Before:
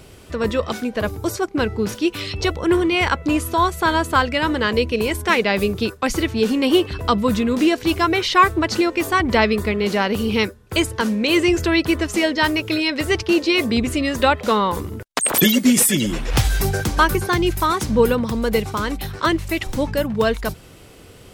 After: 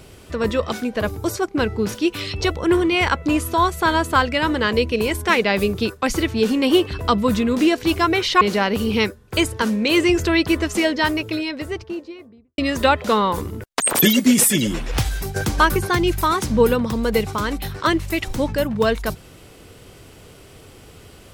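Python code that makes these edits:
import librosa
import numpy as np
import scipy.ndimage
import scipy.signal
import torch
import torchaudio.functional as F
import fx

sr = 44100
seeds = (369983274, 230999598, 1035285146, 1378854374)

y = fx.studio_fade_out(x, sr, start_s=12.12, length_s=1.85)
y = fx.edit(y, sr, fx.cut(start_s=8.41, length_s=1.39),
    fx.fade_out_to(start_s=16.04, length_s=0.71, floor_db=-10.0), tone=tone)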